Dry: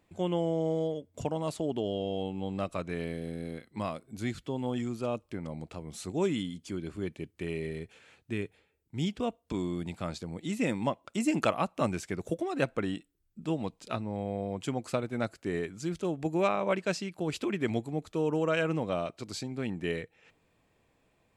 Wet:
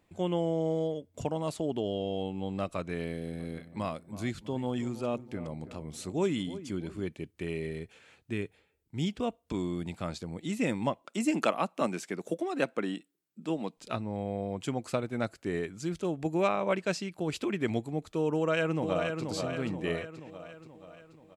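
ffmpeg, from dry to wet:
-filter_complex "[0:a]asplit=3[a][b][c];[a]afade=t=out:st=3.32:d=0.02[d];[b]asplit=2[e][f];[f]adelay=323,lowpass=f=1.2k:p=1,volume=-13.5dB,asplit=2[g][h];[h]adelay=323,lowpass=f=1.2k:p=1,volume=0.48,asplit=2[i][j];[j]adelay=323,lowpass=f=1.2k:p=1,volume=0.48,asplit=2[k][l];[l]adelay=323,lowpass=f=1.2k:p=1,volume=0.48,asplit=2[m][n];[n]adelay=323,lowpass=f=1.2k:p=1,volume=0.48[o];[e][g][i][k][m][o]amix=inputs=6:normalize=0,afade=t=in:st=3.32:d=0.02,afade=t=out:st=7.01:d=0.02[p];[c]afade=t=in:st=7.01:d=0.02[q];[d][p][q]amix=inputs=3:normalize=0,asettb=1/sr,asplit=3[r][s][t];[r]atrim=end=11.024[u];[s]atrim=start=11.02:end=13.77,asetpts=PTS-STARTPTS,afade=t=in:d=0.004:c=qsin,afade=t=out:st=2.746:d=0.004:c=qsin,highpass=f=180:w=0.5412,highpass=f=180:w=1.3066[v];[t]atrim=start=13.766[w];[u][v]acrossfade=d=0.004:c1=hsin:c2=qsin[x];[x][w]acrossfade=d=0.004:c1=qsin:c2=hsin,asplit=2[y][z];[z]afade=t=in:st=18.34:d=0.01,afade=t=out:st=19.23:d=0.01,aecho=0:1:480|960|1440|1920|2400|2880|3360:0.530884|0.291986|0.160593|0.0883259|0.0485792|0.0267186|0.0146952[aa];[y][aa]amix=inputs=2:normalize=0"

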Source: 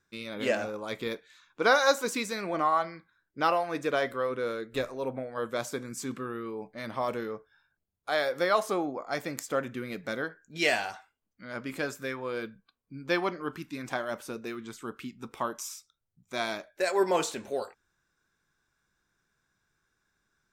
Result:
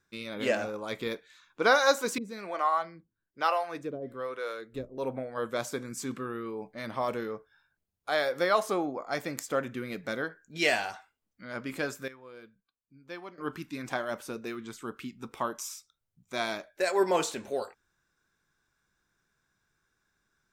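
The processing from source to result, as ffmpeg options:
-filter_complex "[0:a]asettb=1/sr,asplit=3[a][b][c];[a]atrim=end=2.184[d];[b]atrim=start=2.18:end=4.98,asetpts=PTS-STARTPTS,afade=t=in:d=0.004:c=qsin,afade=t=out:st=2.796:d=0.004:c=qsin,acrossover=split=440[e][f];[e]aeval=exprs='val(0)*(1-1/2+1/2*cos(2*PI*1.1*n/s))':c=same[g];[f]aeval=exprs='val(0)*(1-1/2-1/2*cos(2*PI*1.1*n/s))':c=same[h];[g][h]amix=inputs=2:normalize=0[i];[c]atrim=start=4.976[j];[d][i]acrossfade=d=0.004:c1=hsin:c2=qsin[k];[k][j]acrossfade=d=0.004:c1=qsin:c2=hsin,asplit=3[l][m][n];[l]atrim=end=12.08,asetpts=PTS-STARTPTS,afade=t=out:st=11.96:d=0.12:c=log:silence=0.188365[o];[m]atrim=start=12.08:end=13.38,asetpts=PTS-STARTPTS,volume=-14.5dB[p];[n]atrim=start=13.38,asetpts=PTS-STARTPTS,afade=t=in:d=0.12:c=log:silence=0.188365[q];[o][p][q]concat=n=3:v=0:a=1"

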